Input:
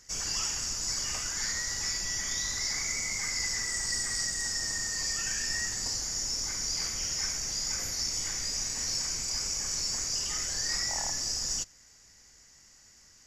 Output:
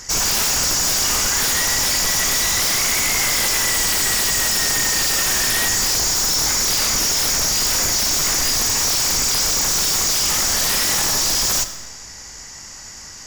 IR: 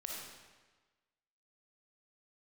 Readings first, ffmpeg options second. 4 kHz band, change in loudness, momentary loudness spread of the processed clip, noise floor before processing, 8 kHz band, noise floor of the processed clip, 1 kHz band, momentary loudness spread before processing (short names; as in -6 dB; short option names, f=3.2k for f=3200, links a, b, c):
+13.0 dB, +14.0 dB, 5 LU, -58 dBFS, +13.0 dB, -37 dBFS, +19.0 dB, 1 LU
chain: -filter_complex "[0:a]equalizer=f=930:t=o:w=0.77:g=5.5,aeval=exprs='0.126*sin(PI/2*5.01*val(0)/0.126)':c=same,asplit=2[a][b];[1:a]atrim=start_sample=2205[c];[b][c]afir=irnorm=-1:irlink=0,volume=-6dB[d];[a][d]amix=inputs=2:normalize=0"